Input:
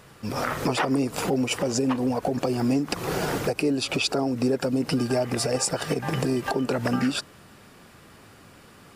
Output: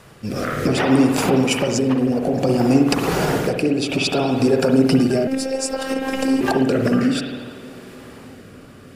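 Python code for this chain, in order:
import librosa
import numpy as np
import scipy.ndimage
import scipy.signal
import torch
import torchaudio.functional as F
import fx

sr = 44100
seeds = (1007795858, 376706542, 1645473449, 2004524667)

p1 = fx.rev_spring(x, sr, rt60_s=1.2, pass_ms=(53,), chirp_ms=60, drr_db=2.5)
p2 = fx.rotary(p1, sr, hz=0.6)
p3 = p2 + fx.echo_wet_lowpass(p2, sr, ms=305, feedback_pct=76, hz=700.0, wet_db=-20.0, dry=0)
p4 = fx.robotise(p3, sr, hz=266.0, at=(5.27, 6.41))
y = p4 * librosa.db_to_amplitude(7.0)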